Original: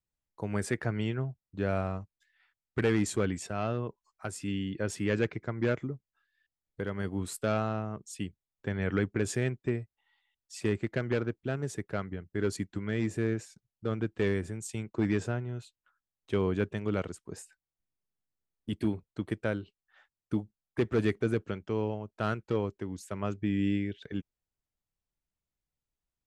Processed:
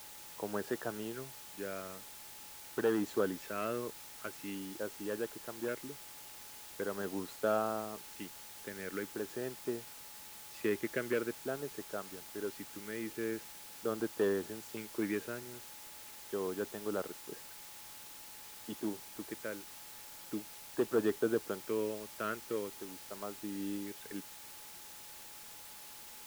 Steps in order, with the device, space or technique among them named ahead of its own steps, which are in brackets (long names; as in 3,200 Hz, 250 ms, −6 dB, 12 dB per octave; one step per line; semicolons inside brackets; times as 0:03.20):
shortwave radio (band-pass filter 330–2,600 Hz; amplitude tremolo 0.28 Hz, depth 56%; auto-filter notch square 0.44 Hz 800–2,200 Hz; steady tone 850 Hz −63 dBFS; white noise bed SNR 11 dB)
level +1 dB